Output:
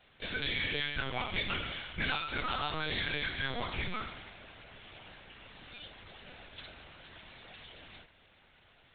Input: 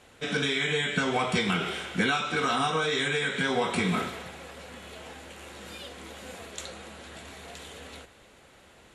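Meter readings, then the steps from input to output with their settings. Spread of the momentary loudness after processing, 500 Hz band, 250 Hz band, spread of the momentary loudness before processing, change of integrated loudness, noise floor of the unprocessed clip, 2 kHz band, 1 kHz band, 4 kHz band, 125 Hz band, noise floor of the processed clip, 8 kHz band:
19 LU, -13.0 dB, -13.5 dB, 18 LU, -7.0 dB, -56 dBFS, -6.5 dB, -9.0 dB, -5.0 dB, -8.0 dB, -64 dBFS, under -40 dB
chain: tilt shelf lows -5 dB, about 1.4 kHz; LPC vocoder at 8 kHz pitch kept; trim -7 dB

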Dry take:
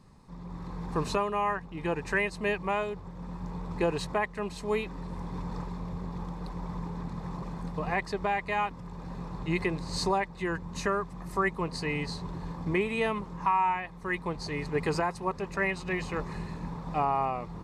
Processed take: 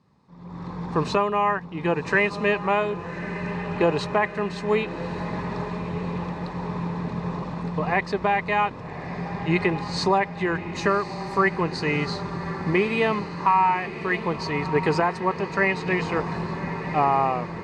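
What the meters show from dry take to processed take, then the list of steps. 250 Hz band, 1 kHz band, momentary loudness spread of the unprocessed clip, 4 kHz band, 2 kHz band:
+7.5 dB, +7.0 dB, 10 LU, +6.0 dB, +7.5 dB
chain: level rider gain up to 13.5 dB; band-pass 100–5000 Hz; echo that smears into a reverb 1187 ms, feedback 59%, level -12 dB; trim -5.5 dB

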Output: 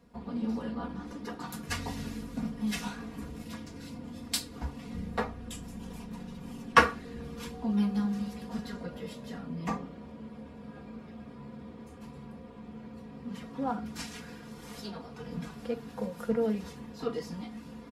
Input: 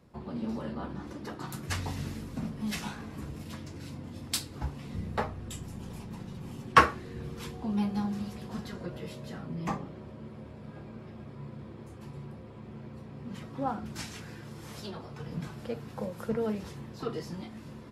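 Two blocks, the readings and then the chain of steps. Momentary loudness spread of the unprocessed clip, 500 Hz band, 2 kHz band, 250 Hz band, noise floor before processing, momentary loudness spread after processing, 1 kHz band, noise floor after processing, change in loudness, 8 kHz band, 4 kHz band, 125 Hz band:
14 LU, +1.5 dB, +1.0 dB, +2.0 dB, -47 dBFS, 16 LU, -2.0 dB, -48 dBFS, +0.5 dB, 0.0 dB, +0.5 dB, -3.5 dB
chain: comb 4.2 ms, depth 77%; trim -2 dB

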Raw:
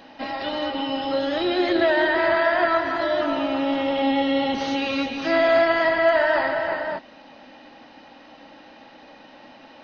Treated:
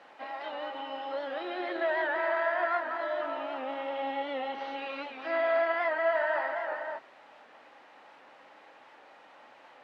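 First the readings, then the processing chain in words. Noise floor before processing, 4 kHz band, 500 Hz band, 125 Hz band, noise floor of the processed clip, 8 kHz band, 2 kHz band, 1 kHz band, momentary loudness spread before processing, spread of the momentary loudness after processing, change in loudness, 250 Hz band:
-48 dBFS, -15.5 dB, -10.0 dB, under -25 dB, -56 dBFS, no reading, -9.0 dB, -8.0 dB, 8 LU, 11 LU, -10.0 dB, -19.0 dB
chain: added noise pink -44 dBFS; band-pass 590–2100 Hz; warped record 78 rpm, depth 100 cents; trim -7 dB

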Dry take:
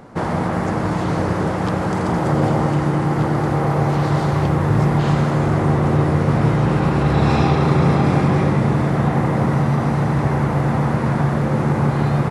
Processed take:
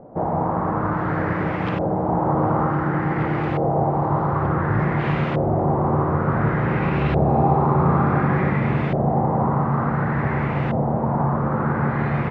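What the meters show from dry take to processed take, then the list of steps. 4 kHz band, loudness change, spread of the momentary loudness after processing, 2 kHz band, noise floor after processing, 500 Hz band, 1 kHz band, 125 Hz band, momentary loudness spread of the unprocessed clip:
under -10 dB, -3.0 dB, 5 LU, -1.5 dB, -24 dBFS, -1.5 dB, +0.5 dB, -4.5 dB, 5 LU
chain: flutter echo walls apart 9.9 m, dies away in 0.32 s; LFO low-pass saw up 0.56 Hz 610–2900 Hz; trim -4.5 dB

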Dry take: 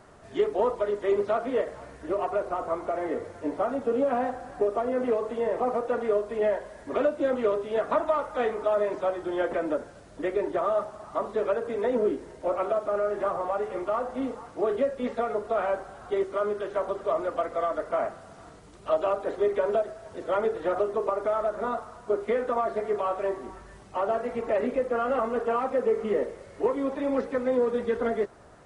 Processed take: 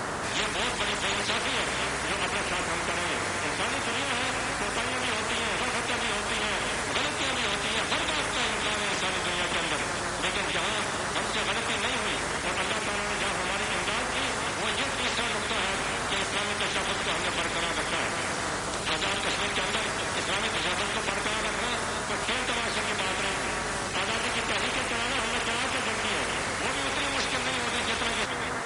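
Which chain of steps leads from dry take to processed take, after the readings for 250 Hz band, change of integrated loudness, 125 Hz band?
-2.5 dB, +1.0 dB, +10.0 dB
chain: high-pass 230 Hz 6 dB/octave; on a send: repeats whose band climbs or falls 248 ms, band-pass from 3.1 kHz, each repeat -1.4 oct, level -10 dB; on the sum: spectrum-flattening compressor 10:1; trim +1.5 dB

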